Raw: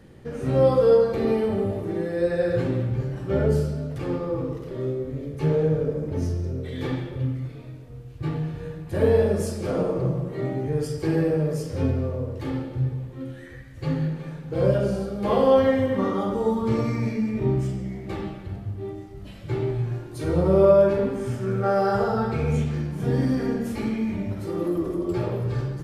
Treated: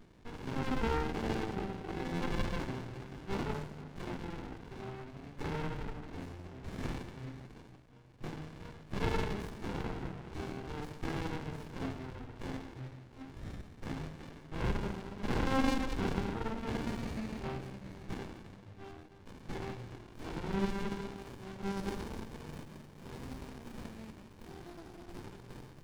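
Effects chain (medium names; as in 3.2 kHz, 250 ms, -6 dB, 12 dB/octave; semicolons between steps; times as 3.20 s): 0.92–2.31 s: whistle 770 Hz -32 dBFS; band-pass sweep 2 kHz -> 5 kHz, 19.64–22.31 s; sliding maximum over 65 samples; trim +11 dB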